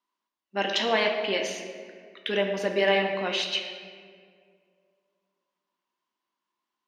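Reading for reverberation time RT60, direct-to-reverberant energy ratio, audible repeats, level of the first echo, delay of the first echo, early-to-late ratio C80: 2.0 s, 2.5 dB, no echo, no echo, no echo, 7.0 dB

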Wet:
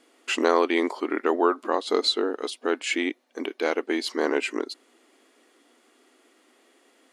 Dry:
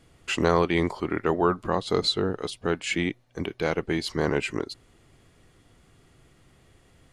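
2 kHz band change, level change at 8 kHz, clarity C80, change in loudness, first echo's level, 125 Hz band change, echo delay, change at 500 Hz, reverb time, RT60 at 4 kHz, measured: +1.5 dB, +1.5 dB, no reverb, +1.0 dB, no echo, under -30 dB, no echo, +1.5 dB, no reverb, no reverb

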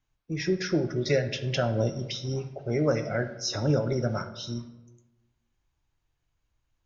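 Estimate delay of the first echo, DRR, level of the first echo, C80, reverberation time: no echo, 8.0 dB, no echo, 14.0 dB, 1.0 s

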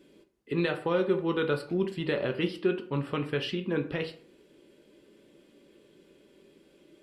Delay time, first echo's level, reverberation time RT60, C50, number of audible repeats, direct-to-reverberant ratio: no echo, no echo, 0.50 s, 13.0 dB, no echo, 6.0 dB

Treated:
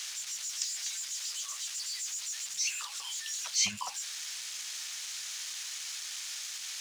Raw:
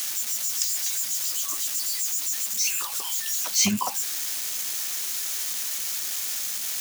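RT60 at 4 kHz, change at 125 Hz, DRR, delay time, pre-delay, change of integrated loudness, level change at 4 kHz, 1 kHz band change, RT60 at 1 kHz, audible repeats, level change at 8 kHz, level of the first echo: no reverb, -17.5 dB, no reverb, no echo, no reverb, -9.5 dB, -5.0 dB, -10.0 dB, no reverb, no echo, -8.0 dB, no echo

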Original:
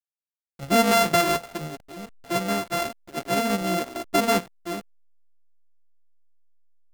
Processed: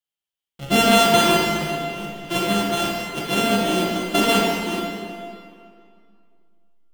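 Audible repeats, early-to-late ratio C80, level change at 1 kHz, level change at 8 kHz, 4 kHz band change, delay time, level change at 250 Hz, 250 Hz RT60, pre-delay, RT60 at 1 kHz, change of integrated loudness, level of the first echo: no echo, 1.5 dB, +4.0 dB, +4.0 dB, +8.5 dB, no echo, +5.5 dB, 2.3 s, 13 ms, 2.3 s, +4.0 dB, no echo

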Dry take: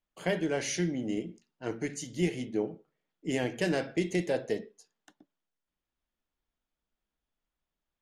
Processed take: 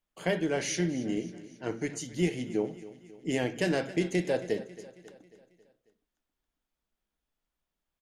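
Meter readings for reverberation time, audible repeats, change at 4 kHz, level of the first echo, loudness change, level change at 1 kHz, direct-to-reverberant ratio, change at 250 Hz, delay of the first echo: no reverb, 4, +1.0 dB, -17.0 dB, +1.0 dB, +1.0 dB, no reverb, +1.0 dB, 272 ms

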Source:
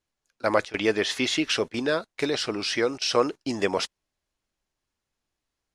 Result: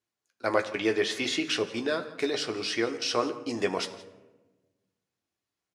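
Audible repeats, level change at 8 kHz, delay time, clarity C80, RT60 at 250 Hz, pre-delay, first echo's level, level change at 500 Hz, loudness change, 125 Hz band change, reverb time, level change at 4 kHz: 1, -3.5 dB, 170 ms, 13.5 dB, 1.6 s, 3 ms, -19.5 dB, -3.5 dB, -3.5 dB, -5.0 dB, 1.2 s, -3.5 dB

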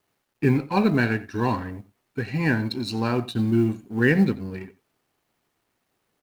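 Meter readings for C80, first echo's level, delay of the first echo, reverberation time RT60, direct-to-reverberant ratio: no reverb, -19.0 dB, 89 ms, no reverb, no reverb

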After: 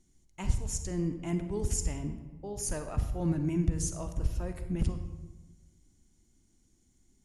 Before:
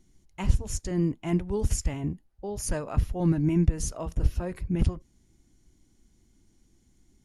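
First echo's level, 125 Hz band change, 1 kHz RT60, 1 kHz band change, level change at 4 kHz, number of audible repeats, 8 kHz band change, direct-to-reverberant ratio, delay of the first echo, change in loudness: no echo, -5.0 dB, 1.1 s, -5.0 dB, -3.5 dB, no echo, 0.0 dB, 8.0 dB, no echo, -5.0 dB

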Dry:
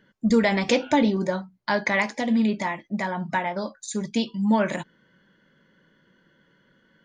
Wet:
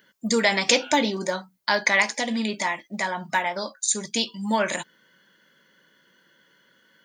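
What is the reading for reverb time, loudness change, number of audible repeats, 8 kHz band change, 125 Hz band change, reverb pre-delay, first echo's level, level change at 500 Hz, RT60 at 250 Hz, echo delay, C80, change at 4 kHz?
no reverb, +0.5 dB, no echo, +12.0 dB, -7.0 dB, no reverb, no echo, -1.0 dB, no reverb, no echo, no reverb, +7.5 dB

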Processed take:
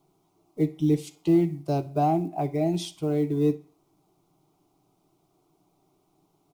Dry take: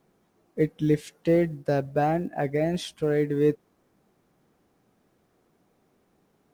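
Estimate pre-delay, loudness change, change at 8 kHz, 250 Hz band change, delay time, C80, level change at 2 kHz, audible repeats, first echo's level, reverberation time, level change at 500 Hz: 3 ms, 0.0 dB, +1.5 dB, +2.5 dB, 63 ms, 22.5 dB, -11.0 dB, 1, -21.0 dB, 0.45 s, -3.5 dB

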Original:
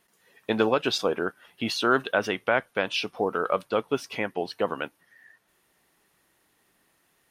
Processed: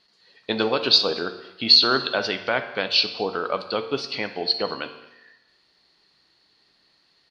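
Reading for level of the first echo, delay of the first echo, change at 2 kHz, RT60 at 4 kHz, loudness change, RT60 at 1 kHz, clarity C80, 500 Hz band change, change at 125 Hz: -22.5 dB, 221 ms, +1.0 dB, 0.90 s, +6.0 dB, 0.95 s, 12.5 dB, 0.0 dB, 0.0 dB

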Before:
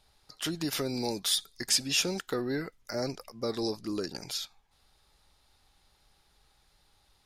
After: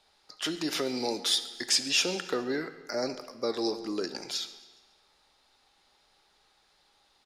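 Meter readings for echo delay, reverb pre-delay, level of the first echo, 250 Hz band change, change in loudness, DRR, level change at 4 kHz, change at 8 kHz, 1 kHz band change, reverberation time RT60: 138 ms, 11 ms, -21.5 dB, 0.0 dB, +1.5 dB, 10.0 dB, +2.5 dB, -0.5 dB, +3.0 dB, 1.3 s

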